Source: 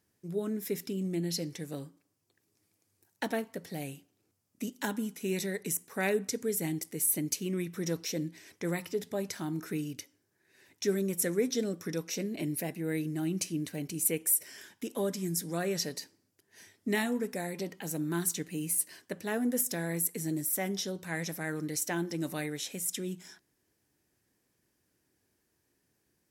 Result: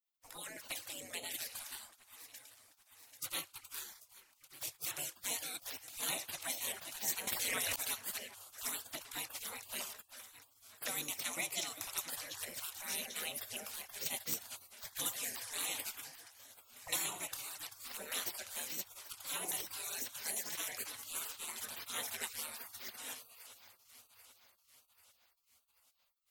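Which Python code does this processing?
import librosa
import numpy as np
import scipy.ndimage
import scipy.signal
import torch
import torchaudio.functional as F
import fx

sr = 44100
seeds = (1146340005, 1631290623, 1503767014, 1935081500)

y = fx.env_flanger(x, sr, rest_ms=9.6, full_db=-28.5)
y = fx.low_shelf(y, sr, hz=420.0, db=-11.0)
y = np.clip(y, -10.0 ** (-23.0 / 20.0), 10.0 ** (-23.0 / 20.0))
y = fx.echo_alternate(y, sr, ms=395, hz=1300.0, feedback_pct=70, wet_db=-12.5)
y = fx.spec_gate(y, sr, threshold_db=-25, keep='weak')
y = fx.env_flatten(y, sr, amount_pct=100, at=(7.27, 7.76))
y = y * 10.0 ** (14.0 / 20.0)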